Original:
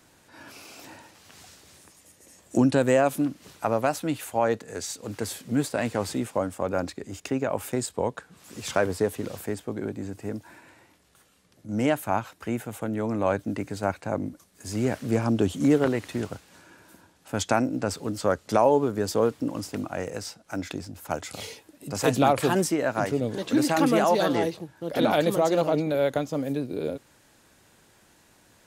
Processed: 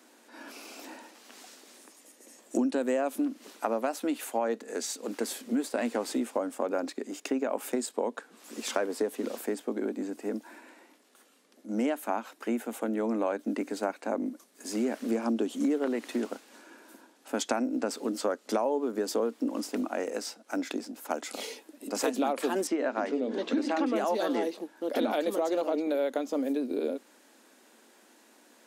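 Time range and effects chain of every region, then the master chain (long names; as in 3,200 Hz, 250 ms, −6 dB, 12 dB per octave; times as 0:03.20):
0:22.67–0:23.96: low-pass filter 4,700 Hz + mains-hum notches 60/120/180/240/300/360/420/480 Hz
whole clip: elliptic high-pass filter 230 Hz, stop band 40 dB; low-shelf EQ 360 Hz +5 dB; downward compressor 4 to 1, threshold −26 dBFS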